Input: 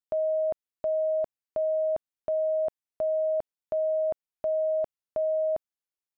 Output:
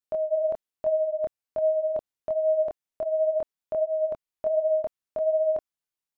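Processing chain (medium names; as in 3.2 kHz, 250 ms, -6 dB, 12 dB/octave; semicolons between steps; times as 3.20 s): 4.02–4.57 s: peaking EQ 690 Hz -7 dB -> +3.5 dB 0.29 oct; chorus voices 2, 1.2 Hz, delay 25 ms, depth 3 ms; trim +4.5 dB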